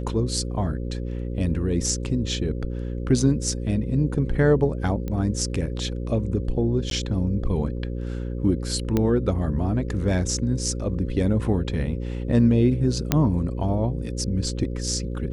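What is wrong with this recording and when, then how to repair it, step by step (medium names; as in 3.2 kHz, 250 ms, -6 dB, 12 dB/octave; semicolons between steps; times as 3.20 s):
buzz 60 Hz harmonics 9 -29 dBFS
5.08 s: pop -18 dBFS
6.90–6.91 s: dropout 12 ms
8.97 s: pop -10 dBFS
13.12 s: pop -4 dBFS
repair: de-click; de-hum 60 Hz, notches 9; interpolate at 6.90 s, 12 ms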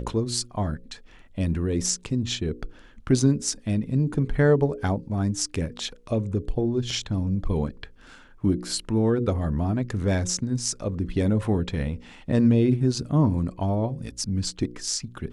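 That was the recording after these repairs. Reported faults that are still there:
nothing left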